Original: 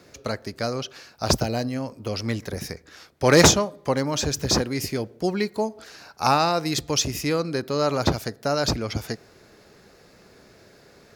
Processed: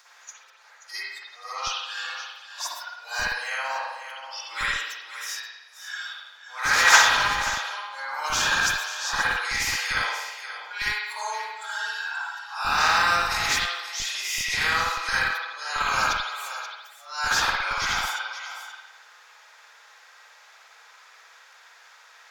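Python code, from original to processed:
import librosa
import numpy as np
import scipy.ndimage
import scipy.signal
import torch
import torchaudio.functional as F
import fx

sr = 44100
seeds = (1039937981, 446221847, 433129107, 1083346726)

p1 = fx.bin_compress(x, sr, power=0.4)
p2 = fx.auto_swell(p1, sr, attack_ms=199.0)
p3 = fx.noise_reduce_blind(p2, sr, reduce_db=19)
p4 = fx.stretch_vocoder_free(p3, sr, factor=2.0)
p5 = fx.dynamic_eq(p4, sr, hz=1600.0, q=4.8, threshold_db=-43.0, ratio=4.0, max_db=5)
p6 = scipy.signal.sosfilt(scipy.signal.butter(4, 1000.0, 'highpass', fs=sr, output='sos'), p5)
p7 = p6 + 10.0 ** (-11.0 / 20.0) * np.pad(p6, (int(531 * sr / 1000.0), 0))[:len(p6)]
p8 = fx.rev_spring(p7, sr, rt60_s=1.0, pass_ms=(52,), chirp_ms=40, drr_db=-7.5)
p9 = fx.schmitt(p8, sr, flips_db=-10.5)
p10 = p8 + F.gain(torch.from_numpy(p9), -10.0).numpy()
p11 = fx.upward_expand(p10, sr, threshold_db=-9.0, expansion=2.5)
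y = F.gain(torch.from_numpy(p11), -4.0).numpy()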